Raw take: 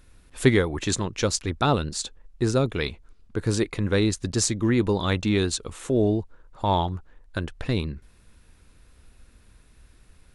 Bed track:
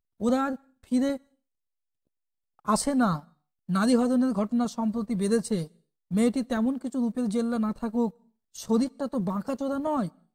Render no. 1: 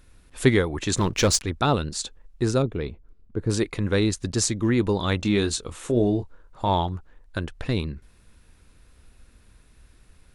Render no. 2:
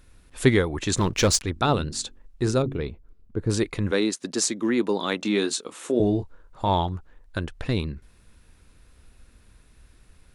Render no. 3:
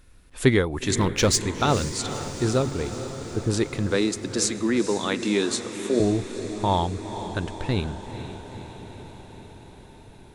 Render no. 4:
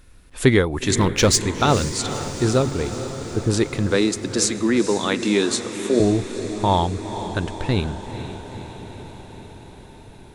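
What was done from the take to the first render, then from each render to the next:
0.97–1.42 s: waveshaping leveller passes 2; 2.62–3.50 s: FFT filter 400 Hz 0 dB, 920 Hz -7 dB, 8.6 kHz -18 dB; 5.17–6.69 s: doubling 25 ms -9 dB
1.52–2.82 s: de-hum 46.01 Hz, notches 8; 3.91–6.00 s: high-pass 210 Hz 24 dB/octave
echo that smears into a reverb 475 ms, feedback 68%, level -11 dB
trim +4 dB; peak limiter -3 dBFS, peak gain reduction 1.5 dB

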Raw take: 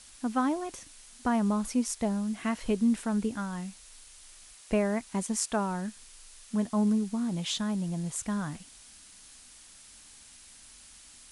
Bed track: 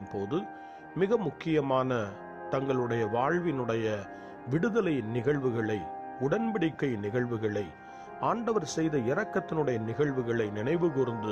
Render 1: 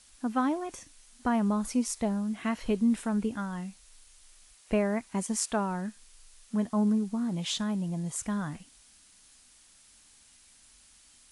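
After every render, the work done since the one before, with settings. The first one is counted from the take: noise print and reduce 6 dB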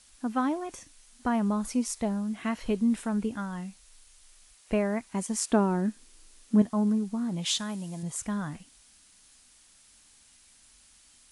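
5.49–6.62 s: peaking EQ 300 Hz +14 dB 1.2 oct; 7.45–8.03 s: tilt EQ +2 dB/octave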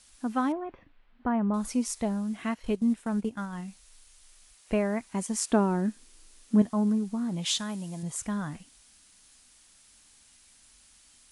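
0.52–1.54 s: Gaussian low-pass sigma 3.6 samples; 2.37–3.68 s: transient shaper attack -1 dB, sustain -11 dB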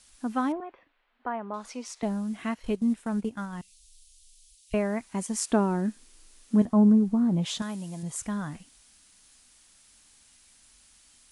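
0.60–2.03 s: three-band isolator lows -19 dB, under 370 Hz, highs -18 dB, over 6.3 kHz; 3.61–4.74 s: inverse Chebyshev band-stop 220–1100 Hz, stop band 60 dB; 6.65–7.62 s: tilt shelf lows +7.5 dB, about 1.4 kHz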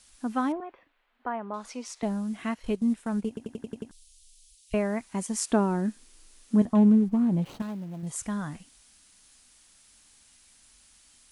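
3.28 s: stutter in place 0.09 s, 7 plays; 6.75–8.07 s: median filter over 25 samples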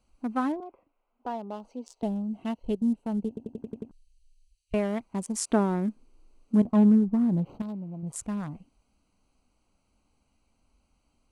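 local Wiener filter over 25 samples; 1.23–3.60 s: time-frequency box 970–2600 Hz -8 dB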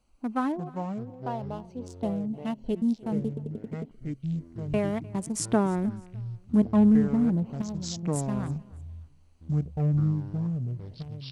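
ever faster or slower copies 250 ms, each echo -6 st, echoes 3, each echo -6 dB; feedback delay 303 ms, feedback 29%, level -22.5 dB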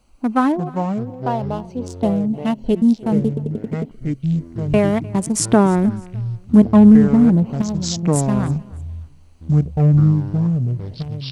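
trim +11.5 dB; peak limiter -2 dBFS, peak gain reduction 2 dB

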